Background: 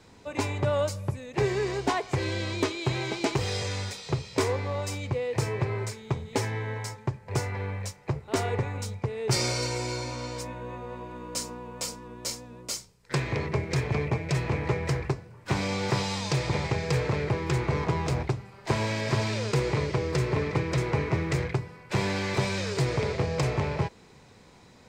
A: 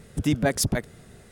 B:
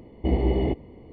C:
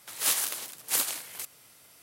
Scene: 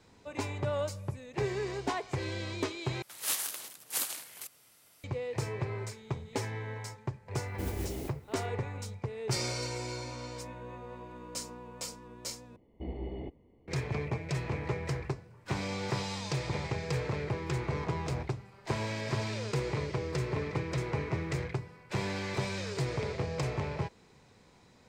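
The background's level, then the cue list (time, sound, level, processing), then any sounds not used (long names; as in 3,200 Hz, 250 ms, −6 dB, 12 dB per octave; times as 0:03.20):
background −6.5 dB
0:03.02: overwrite with C −6 dB
0:07.34: mix in B −15 dB + noise that follows the level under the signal 12 dB
0:12.56: overwrite with B −16.5 dB
not used: A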